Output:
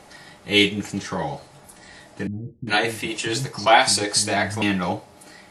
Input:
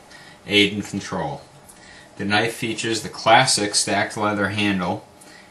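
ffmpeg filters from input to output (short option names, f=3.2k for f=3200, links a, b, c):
-filter_complex "[0:a]asettb=1/sr,asplit=3[a][b][c];[a]atrim=end=2.274[d];[b]atrim=start=2.27:end=4.62,asetpts=PTS-STARTPTS,afade=t=in:d=0.004:c=qsin,afade=t=out:st=2.346:d=0.004:c=qsin,acrossover=split=240[e][f];[f]adelay=400[g];[e][g]amix=inputs=2:normalize=0,atrim=end_sample=103635[h];[c]atrim=start=4.616[i];[d][h]acrossfade=d=0.004:c1=hsin:c2=qsin[j];[j][i]acrossfade=d=0.004:c1=qsin:c2=hsin,volume=-1dB"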